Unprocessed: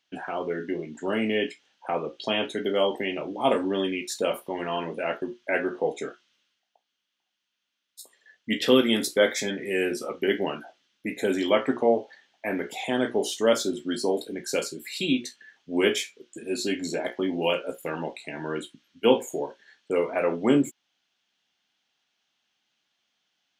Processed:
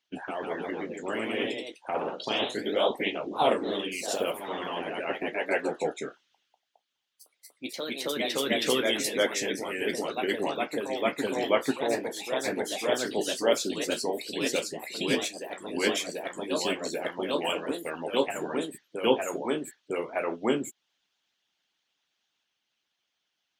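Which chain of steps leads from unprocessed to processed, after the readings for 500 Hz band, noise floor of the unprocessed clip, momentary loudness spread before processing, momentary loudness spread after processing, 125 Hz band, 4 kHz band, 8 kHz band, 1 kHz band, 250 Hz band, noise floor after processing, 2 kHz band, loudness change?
-3.0 dB, -80 dBFS, 11 LU, 8 LU, -5.5 dB, 0.0 dB, +1.0 dB, 0.0 dB, -5.0 dB, -81 dBFS, -1.0 dB, -3.0 dB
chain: ever faster or slower copies 163 ms, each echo +1 st, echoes 3; harmonic-percussive split harmonic -15 dB

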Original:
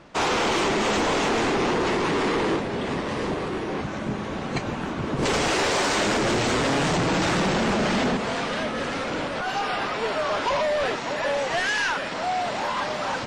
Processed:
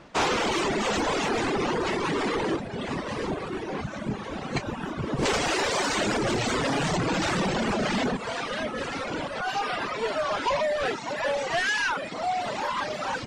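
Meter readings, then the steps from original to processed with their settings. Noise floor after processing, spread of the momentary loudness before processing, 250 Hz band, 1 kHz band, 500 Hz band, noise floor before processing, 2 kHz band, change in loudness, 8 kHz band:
-36 dBFS, 7 LU, -3.5 dB, -3.0 dB, -3.0 dB, -31 dBFS, -2.5 dB, -3.0 dB, -2.5 dB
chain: reverb removal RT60 1.6 s

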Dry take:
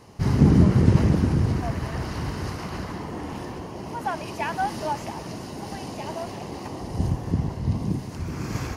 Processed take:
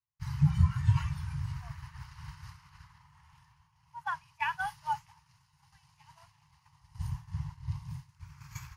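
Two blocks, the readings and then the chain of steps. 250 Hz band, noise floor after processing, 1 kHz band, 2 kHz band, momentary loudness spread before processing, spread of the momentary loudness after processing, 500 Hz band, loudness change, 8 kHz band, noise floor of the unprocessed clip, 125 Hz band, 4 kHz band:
under -15 dB, -69 dBFS, -8.0 dB, -4.5 dB, 17 LU, 21 LU, under -35 dB, -8.0 dB, -13.5 dB, -36 dBFS, -9.5 dB, -11.5 dB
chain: expander -23 dBFS; spectral noise reduction 11 dB; Chebyshev band-stop 150–910 Hz, order 4; gain riding within 4 dB 2 s; trim -2.5 dB

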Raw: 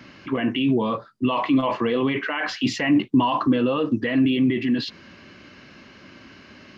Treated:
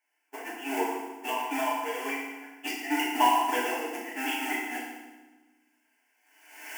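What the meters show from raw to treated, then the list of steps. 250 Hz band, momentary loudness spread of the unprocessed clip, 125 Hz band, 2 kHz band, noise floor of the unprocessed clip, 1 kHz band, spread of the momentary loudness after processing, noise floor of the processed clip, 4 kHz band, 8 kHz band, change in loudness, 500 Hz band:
-15.5 dB, 7 LU, under -40 dB, -3.5 dB, -48 dBFS, -0.5 dB, 16 LU, -72 dBFS, -5.5 dB, no reading, -7.5 dB, -9.5 dB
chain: jump at every zero crossing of -23 dBFS; recorder AGC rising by 5.1 dB/s; gate -17 dBFS, range -51 dB; high-pass 540 Hz 24 dB/octave; static phaser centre 800 Hz, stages 8; modulation noise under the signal 30 dB; FDN reverb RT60 1.2 s, low-frequency decay 1.45×, high-frequency decay 0.9×, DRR -5.5 dB

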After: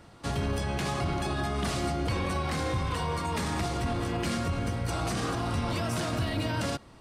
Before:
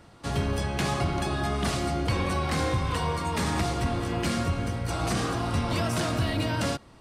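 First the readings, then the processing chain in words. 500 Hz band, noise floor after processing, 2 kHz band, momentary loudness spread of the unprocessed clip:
-2.5 dB, -52 dBFS, -2.5 dB, 2 LU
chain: peak limiter -21.5 dBFS, peak gain reduction 5.5 dB

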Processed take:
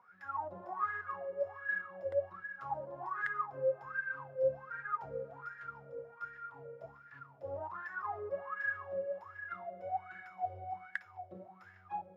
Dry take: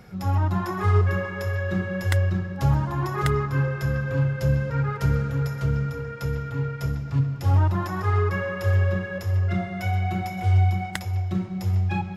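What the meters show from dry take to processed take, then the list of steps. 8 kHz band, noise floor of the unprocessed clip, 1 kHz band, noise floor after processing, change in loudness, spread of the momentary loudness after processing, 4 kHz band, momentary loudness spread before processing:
no reading, -34 dBFS, -8.5 dB, -59 dBFS, -15.0 dB, 15 LU, under -25 dB, 7 LU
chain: wah-wah 1.3 Hz 520–1700 Hz, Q 17; trim +4.5 dB

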